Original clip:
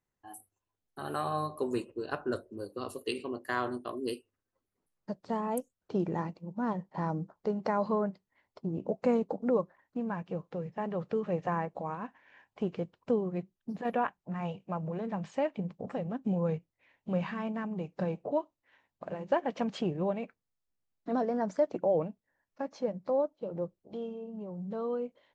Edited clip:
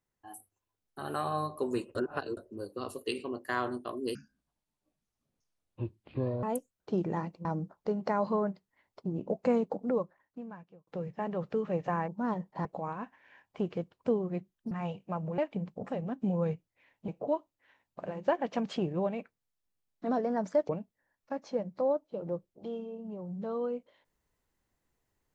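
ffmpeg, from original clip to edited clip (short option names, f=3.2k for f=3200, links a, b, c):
-filter_complex "[0:a]asplit=13[a][b][c][d][e][f][g][h][i][j][k][l][m];[a]atrim=end=1.952[n];[b]atrim=start=1.948:end=2.372,asetpts=PTS-STARTPTS,areverse[o];[c]atrim=start=2.368:end=4.154[p];[d]atrim=start=4.15:end=5.45,asetpts=PTS-STARTPTS,asetrate=25137,aresample=44100[q];[e]atrim=start=5.446:end=6.472[r];[f]atrim=start=7.038:end=10.46,asetpts=PTS-STARTPTS,afade=t=out:st=2.232:d=1.19[s];[g]atrim=start=10.46:end=11.672,asetpts=PTS-STARTPTS,afade=t=in:d=0.004:c=hsin[t];[h]atrim=start=6.468:end=7.042[u];[i]atrim=start=11.668:end=13.732[v];[j]atrim=start=14.308:end=14.982[w];[k]atrim=start=15.408:end=17.112[x];[l]atrim=start=18.118:end=21.732[y];[m]atrim=start=21.978[z];[n][o]acrossfade=d=0.004:c1=hsin:c2=hsin[aa];[aa][p]acrossfade=d=0.004:c1=hsin:c2=hsin[ab];[ab][q]acrossfade=d=0.004:c1=hsin:c2=hsin[ac];[ac][r]acrossfade=d=0.004:c1=hsin:c2=hsin[ad];[s][t]concat=n=2:v=0:a=1[ae];[ad][ae]acrossfade=d=0.004:c1=hsin:c2=hsin[af];[af][u]acrossfade=d=0.004:c1=hsin:c2=hsin[ag];[ag][v]acrossfade=d=0.004:c1=hsin:c2=hsin[ah];[ah][w]acrossfade=d=0.004:c1=hsin:c2=hsin[ai];[ai][x]acrossfade=d=0.004:c1=hsin:c2=hsin[aj];[aj][y]acrossfade=d=0.004:c1=hsin:c2=hsin[ak];[ak][z]acrossfade=d=0.004:c1=hsin:c2=hsin"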